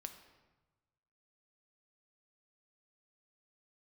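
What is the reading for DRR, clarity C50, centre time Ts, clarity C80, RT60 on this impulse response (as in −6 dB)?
6.5 dB, 9.0 dB, 16 ms, 11.0 dB, 1.2 s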